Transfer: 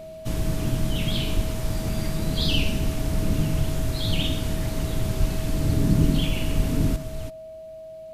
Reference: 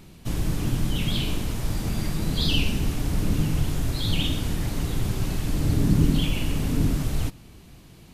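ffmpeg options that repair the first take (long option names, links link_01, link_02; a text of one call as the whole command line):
ffmpeg -i in.wav -filter_complex "[0:a]bandreject=frequency=640:width=30,asplit=3[link_01][link_02][link_03];[link_01]afade=type=out:start_time=1.35:duration=0.02[link_04];[link_02]highpass=frequency=140:width=0.5412,highpass=frequency=140:width=1.3066,afade=type=in:start_time=1.35:duration=0.02,afade=type=out:start_time=1.47:duration=0.02[link_05];[link_03]afade=type=in:start_time=1.47:duration=0.02[link_06];[link_04][link_05][link_06]amix=inputs=3:normalize=0,asplit=3[link_07][link_08][link_09];[link_07]afade=type=out:start_time=5.19:duration=0.02[link_10];[link_08]highpass=frequency=140:width=0.5412,highpass=frequency=140:width=1.3066,afade=type=in:start_time=5.19:duration=0.02,afade=type=out:start_time=5.31:duration=0.02[link_11];[link_09]afade=type=in:start_time=5.31:duration=0.02[link_12];[link_10][link_11][link_12]amix=inputs=3:normalize=0,asplit=3[link_13][link_14][link_15];[link_13]afade=type=out:start_time=6.56:duration=0.02[link_16];[link_14]highpass=frequency=140:width=0.5412,highpass=frequency=140:width=1.3066,afade=type=in:start_time=6.56:duration=0.02,afade=type=out:start_time=6.68:duration=0.02[link_17];[link_15]afade=type=in:start_time=6.68:duration=0.02[link_18];[link_16][link_17][link_18]amix=inputs=3:normalize=0,asetnsamples=nb_out_samples=441:pad=0,asendcmd='6.96 volume volume 8dB',volume=0dB" out.wav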